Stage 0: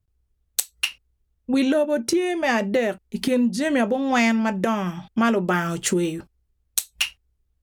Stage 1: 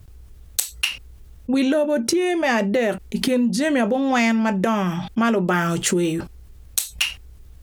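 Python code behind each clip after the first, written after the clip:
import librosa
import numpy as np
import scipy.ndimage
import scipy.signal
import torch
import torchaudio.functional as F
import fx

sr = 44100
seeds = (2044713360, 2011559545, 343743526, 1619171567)

y = fx.env_flatten(x, sr, amount_pct=50)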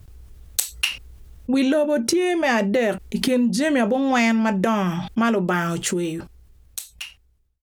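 y = fx.fade_out_tail(x, sr, length_s=2.52)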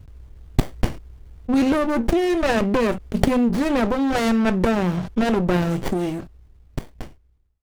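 y = fx.running_max(x, sr, window=33)
y = y * 10.0 ** (2.0 / 20.0)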